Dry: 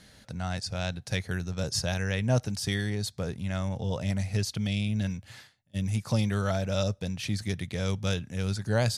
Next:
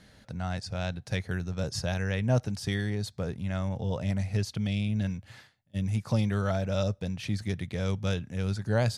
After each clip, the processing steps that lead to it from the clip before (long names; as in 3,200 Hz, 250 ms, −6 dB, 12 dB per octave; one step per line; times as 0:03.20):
high-shelf EQ 3,400 Hz −8 dB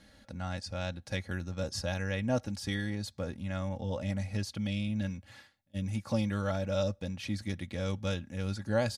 comb filter 3.6 ms, depth 61%
level −3.5 dB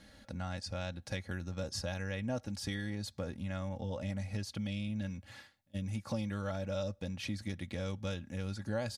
downward compressor 2.5 to 1, threshold −37 dBFS, peak gain reduction 9 dB
level +1 dB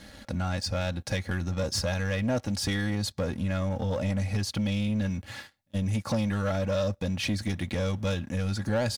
leveller curve on the samples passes 2
level +4 dB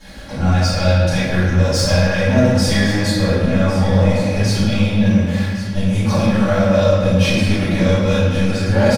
single-tap delay 1,107 ms −12.5 dB
convolution reverb RT60 1.8 s, pre-delay 3 ms, DRR −16.5 dB
level −5.5 dB